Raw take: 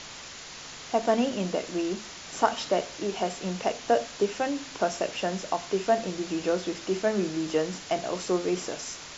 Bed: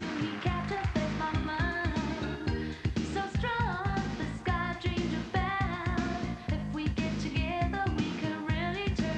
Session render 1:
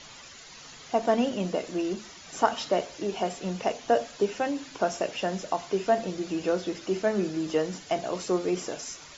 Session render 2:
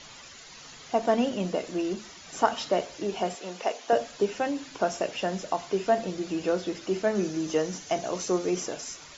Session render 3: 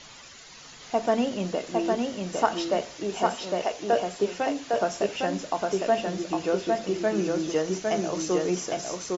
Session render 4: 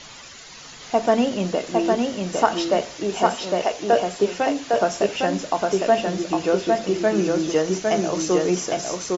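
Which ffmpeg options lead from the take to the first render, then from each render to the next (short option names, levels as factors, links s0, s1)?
-af "afftdn=nr=10:nf=-43"
-filter_complex "[0:a]asettb=1/sr,asplit=3[s0][s1][s2];[s0]atrim=end=3.354[s3];[s1]atrim=start=3.35:end=3.93,asetpts=PTS-STARTPTS,afade=t=in:d=0.004:c=qsin,afade=t=out:st=0.576:d=0.004:c=qsin,highpass=380[s4];[s2]atrim=start=3.926[s5];[s3][s4]acrossfade=d=0.004:c1=hsin:c2=qsin[s6];[s6][s5]acrossfade=d=0.004:c1=qsin:c2=hsin,asettb=1/sr,asplit=3[s7][s8][s9];[s7]atrim=end=7.154[s10];[s8]atrim=start=7.15:end=8.66,asetpts=PTS-STARTPTS,afade=t=in:d=0.004:c=qsin,afade=t=out:st=1.506:d=0.004:c=qsin,equalizer=f=6100:w=5.4:g=8.5[s11];[s9]atrim=start=8.656[s12];[s10][s11]acrossfade=d=0.004:c1=hsin:c2=qsin[s13];[s13][s12]acrossfade=d=0.004:c1=qsin:c2=hsin"
-af "aecho=1:1:807:0.708"
-af "volume=1.88,alimiter=limit=0.708:level=0:latency=1"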